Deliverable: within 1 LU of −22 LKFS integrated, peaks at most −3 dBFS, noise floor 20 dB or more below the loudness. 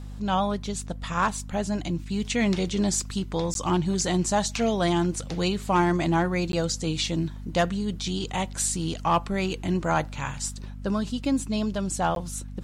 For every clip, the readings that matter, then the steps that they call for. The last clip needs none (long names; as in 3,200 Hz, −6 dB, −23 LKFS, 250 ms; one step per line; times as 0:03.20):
number of dropouts 3; longest dropout 12 ms; mains hum 50 Hz; hum harmonics up to 250 Hz; level of the hum −35 dBFS; integrated loudness −26.5 LKFS; sample peak −12.0 dBFS; target loudness −22.0 LKFS
→ repair the gap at 0:03.54/0:06.52/0:12.15, 12 ms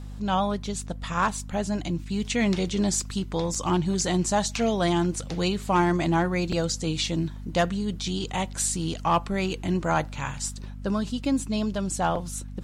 number of dropouts 0; mains hum 50 Hz; hum harmonics up to 250 Hz; level of the hum −35 dBFS
→ hum removal 50 Hz, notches 5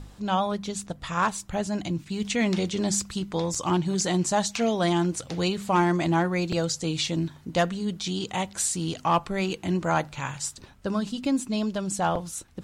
mains hum none found; integrated loudness −27.0 LKFS; sample peak −12.5 dBFS; target loudness −22.0 LKFS
→ level +5 dB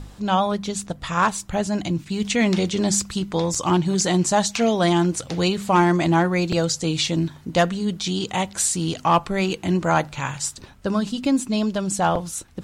integrated loudness −22.0 LKFS; sample peak −7.5 dBFS; background noise floor −46 dBFS